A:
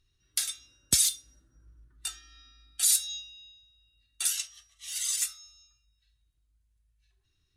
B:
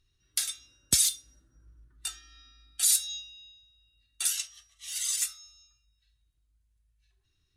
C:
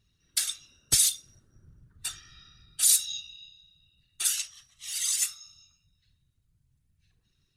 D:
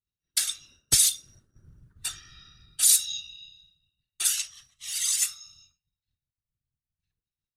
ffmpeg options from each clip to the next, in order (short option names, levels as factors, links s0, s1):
-af anull
-af "afftfilt=real='hypot(re,im)*cos(2*PI*random(0))':imag='hypot(re,im)*sin(2*PI*random(1))':win_size=512:overlap=0.75,volume=2.51"
-af "agate=range=0.0224:threshold=0.00178:ratio=3:detection=peak,volume=1.26"